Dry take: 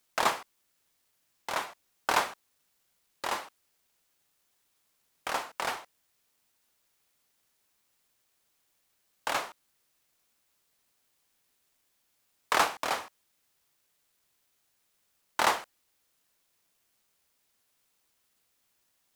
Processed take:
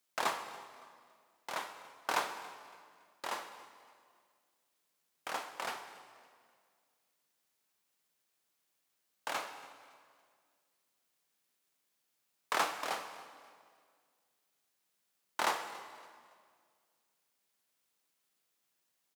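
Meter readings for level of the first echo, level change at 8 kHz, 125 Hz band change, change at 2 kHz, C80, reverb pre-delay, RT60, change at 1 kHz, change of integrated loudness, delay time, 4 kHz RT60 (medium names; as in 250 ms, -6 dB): -20.5 dB, -6.5 dB, no reading, -6.5 dB, 10.0 dB, 13 ms, 2.0 s, -6.5 dB, -7.0 dB, 281 ms, 1.7 s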